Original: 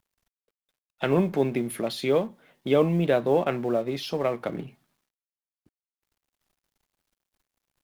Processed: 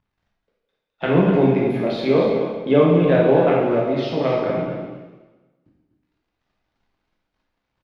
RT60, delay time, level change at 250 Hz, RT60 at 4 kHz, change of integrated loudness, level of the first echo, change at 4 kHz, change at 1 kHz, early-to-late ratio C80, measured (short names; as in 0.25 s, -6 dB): 1.2 s, 0.249 s, +8.5 dB, 1.2 s, +7.5 dB, -9.0 dB, +2.5 dB, +7.5 dB, 2.0 dB